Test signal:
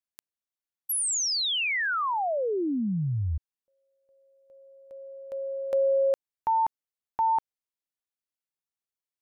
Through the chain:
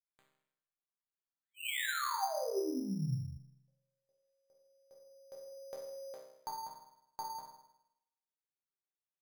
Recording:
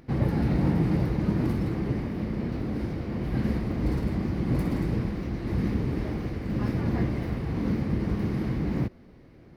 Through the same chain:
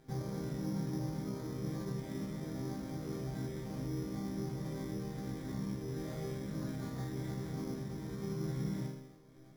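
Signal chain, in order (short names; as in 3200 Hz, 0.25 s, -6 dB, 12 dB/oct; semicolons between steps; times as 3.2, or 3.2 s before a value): LPF 3200 Hz; compressor, threshold -28 dBFS; resonator bank C3 minor, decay 0.85 s; careless resampling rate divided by 8×, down filtered, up hold; gain +13.5 dB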